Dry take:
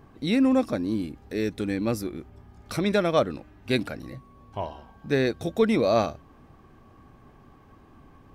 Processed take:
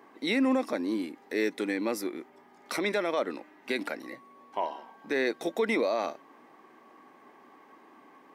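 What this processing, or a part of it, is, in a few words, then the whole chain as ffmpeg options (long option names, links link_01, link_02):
laptop speaker: -af "highpass=frequency=270:width=0.5412,highpass=frequency=270:width=1.3066,equalizer=frequency=930:width_type=o:width=0.34:gain=6,equalizer=frequency=2000:width_type=o:width=0.31:gain=9,alimiter=limit=-18.5dB:level=0:latency=1:release=73"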